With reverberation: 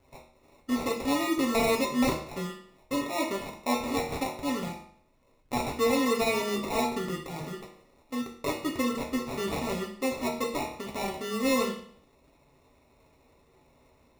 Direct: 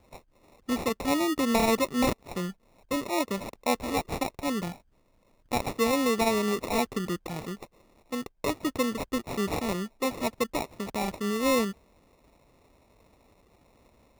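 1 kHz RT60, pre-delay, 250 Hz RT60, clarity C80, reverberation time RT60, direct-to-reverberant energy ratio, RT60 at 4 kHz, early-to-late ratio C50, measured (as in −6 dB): 0.55 s, 6 ms, 0.60 s, 10.0 dB, 0.55 s, −2.0 dB, 0.55 s, 6.5 dB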